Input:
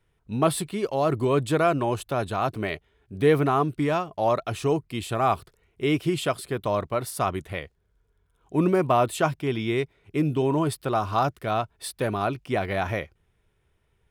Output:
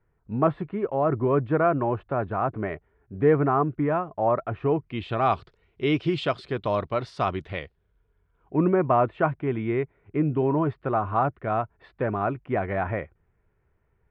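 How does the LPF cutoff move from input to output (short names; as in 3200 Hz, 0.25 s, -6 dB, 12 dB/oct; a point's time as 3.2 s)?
LPF 24 dB/oct
4.55 s 1800 Hz
5.31 s 4500 Hz
7.61 s 4500 Hz
8.6 s 2000 Hz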